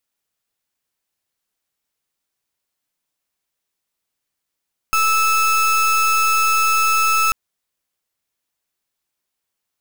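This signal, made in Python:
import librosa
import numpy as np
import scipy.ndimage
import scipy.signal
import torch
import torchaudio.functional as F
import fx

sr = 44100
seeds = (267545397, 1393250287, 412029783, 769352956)

y = fx.pulse(sr, length_s=2.39, hz=1310.0, level_db=-16.0, duty_pct=31)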